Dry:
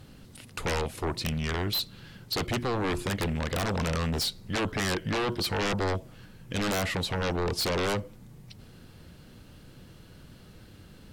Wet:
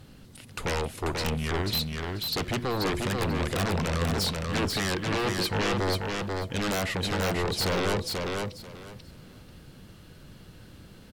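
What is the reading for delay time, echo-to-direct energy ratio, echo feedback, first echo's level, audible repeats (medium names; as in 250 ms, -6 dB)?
488 ms, -3.5 dB, 20%, -3.5 dB, 3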